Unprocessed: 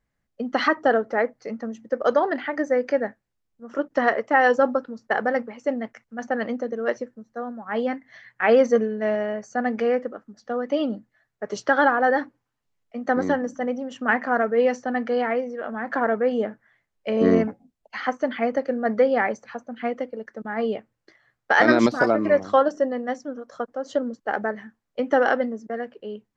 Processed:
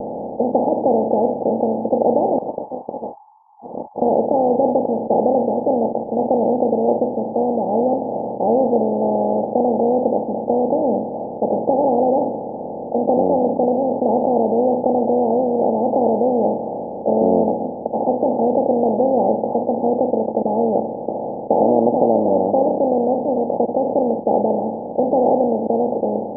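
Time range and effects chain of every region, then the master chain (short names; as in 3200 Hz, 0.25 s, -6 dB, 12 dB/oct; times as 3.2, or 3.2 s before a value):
2.38–4.02 steep high-pass 1100 Hz 96 dB/oct + tilt -3.5 dB/oct + Doppler distortion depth 0.15 ms
whole clip: per-bin compression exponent 0.2; steep low-pass 880 Hz 96 dB/oct; gain -4.5 dB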